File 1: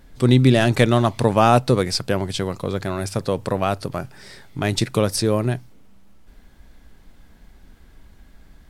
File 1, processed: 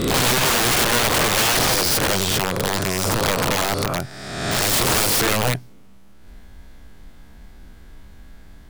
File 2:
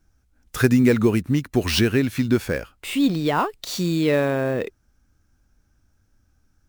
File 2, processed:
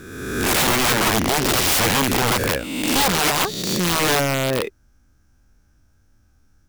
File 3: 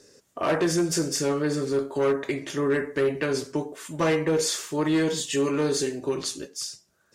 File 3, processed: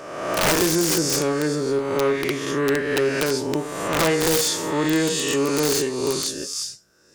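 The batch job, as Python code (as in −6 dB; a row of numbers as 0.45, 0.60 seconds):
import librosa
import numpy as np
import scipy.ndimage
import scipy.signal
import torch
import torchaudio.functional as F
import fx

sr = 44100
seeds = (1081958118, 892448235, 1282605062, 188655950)

y = fx.spec_swells(x, sr, rise_s=1.27)
y = (np.mod(10.0 ** (14.5 / 20.0) * y + 1.0, 2.0) - 1.0) / 10.0 ** (14.5 / 20.0)
y = F.gain(torch.from_numpy(y), 1.5).numpy()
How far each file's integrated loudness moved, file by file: +1.5, +3.0, +4.5 LU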